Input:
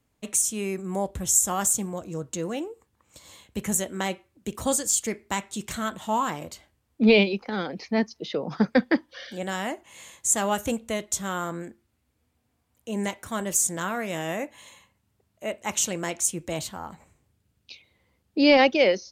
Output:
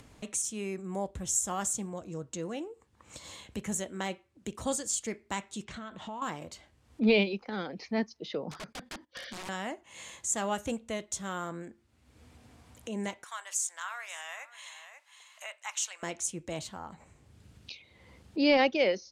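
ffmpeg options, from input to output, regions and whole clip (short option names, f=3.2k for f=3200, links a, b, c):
-filter_complex "[0:a]asettb=1/sr,asplit=3[a][b][c];[a]atrim=end=5.644[d];[b]atrim=start=5.64:end=6.22,asetpts=PTS-STARTPTS,afade=t=in:d=0.004:c=qsin,afade=t=out:st=0.576:d=0.004:c=qsin,lowpass=4.4k,acompressor=threshold=-36dB:ratio=2.5:attack=3.2:release=140:knee=1:detection=peak[e];[c]atrim=start=6.216[f];[d][e]acrossfade=d=0.004:c1=hsin:c2=qsin[g];[g][f]acrossfade=d=0.004:c1=qsin:c2=hsin,asettb=1/sr,asplit=3[h][i][j];[h]atrim=end=8.514[k];[i]atrim=start=8.51:end=9.49,asetpts=PTS-STARTPTS,afade=t=in:d=0.004:c=qsin,afade=t=out:st=0.976:d=0.004:c=qsin,agate=range=-17dB:threshold=-46dB:ratio=16:release=100:detection=peak,acompressor=threshold=-28dB:ratio=16:attack=3.2:release=140:knee=1:detection=peak,aeval=exprs='(mod(37.6*val(0)+1,2)-1)/37.6':c=same[l];[j]atrim=start=9.486[m];[k][l]acrossfade=d=0.004:c1=hsin:c2=qsin[n];[n][m]acrossfade=d=0.004:c1=qsin:c2=hsin,asettb=1/sr,asplit=3[o][p][q];[o]atrim=end=13.244[r];[p]atrim=start=13.24:end=16.03,asetpts=PTS-STARTPTS,afade=t=in:d=0.004:c=qsin,afade=t=out:st=2.786:d=0.004:c=qsin,highpass=f=950:w=0.5412,highpass=f=950:w=1.3066,aecho=1:1:540:0.0944,atrim=end_sample=123039[s];[q]atrim=start=16.026[t];[r][s]acrossfade=d=0.004:c1=hsin:c2=qsin[u];[u][t]acrossfade=d=0.004:c1=qsin:c2=hsin,lowpass=8.4k,acompressor=mode=upward:threshold=-30dB:ratio=2.5,volume=-6.5dB"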